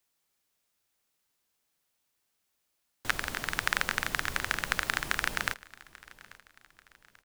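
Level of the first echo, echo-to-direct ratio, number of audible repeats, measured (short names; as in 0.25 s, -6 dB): -21.5 dB, -20.5 dB, 2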